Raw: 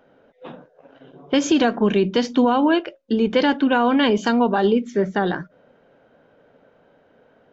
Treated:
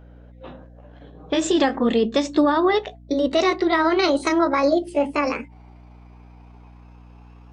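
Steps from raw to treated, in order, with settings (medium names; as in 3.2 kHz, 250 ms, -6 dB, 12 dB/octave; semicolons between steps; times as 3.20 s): pitch bend over the whole clip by +9.5 st starting unshifted; hum 60 Hz, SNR 23 dB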